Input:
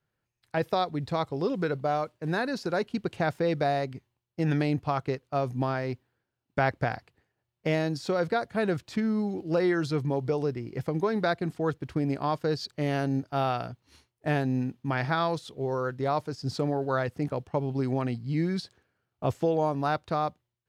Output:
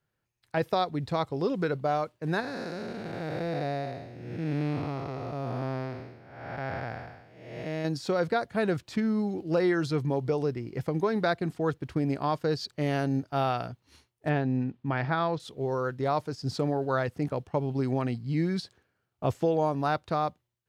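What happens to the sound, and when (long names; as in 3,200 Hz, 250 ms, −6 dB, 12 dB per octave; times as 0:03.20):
0:02.40–0:07.85: spectrum smeared in time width 416 ms
0:14.29–0:15.40: high-frequency loss of the air 200 metres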